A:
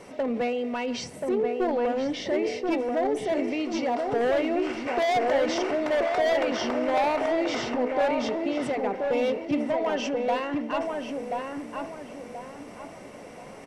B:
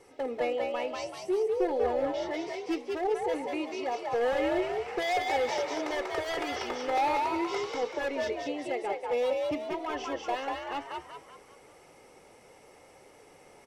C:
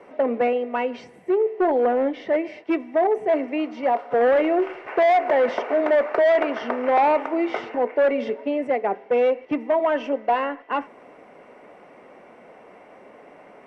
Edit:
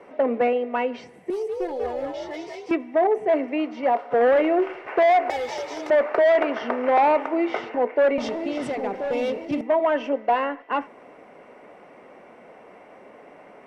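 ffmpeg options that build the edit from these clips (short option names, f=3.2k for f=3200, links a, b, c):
-filter_complex "[1:a]asplit=2[a][b];[2:a]asplit=4[c][d][e][f];[c]atrim=end=1.302[g];[a]atrim=start=1.298:end=2.712[h];[d]atrim=start=2.708:end=5.302[i];[b]atrim=start=5.298:end=5.902[j];[e]atrim=start=5.898:end=8.182[k];[0:a]atrim=start=8.178:end=9.612[l];[f]atrim=start=9.608[m];[g][h]acrossfade=d=0.004:c1=hsin:c2=hsin[n];[n][i]acrossfade=d=0.004:c1=hsin:c2=hsin[o];[o][j]acrossfade=d=0.004:c1=hsin:c2=hsin[p];[p][k]acrossfade=d=0.004:c1=hsin:c2=hsin[q];[q][l]acrossfade=d=0.004:c1=hsin:c2=hsin[r];[r][m]acrossfade=d=0.004:c1=hsin:c2=hsin"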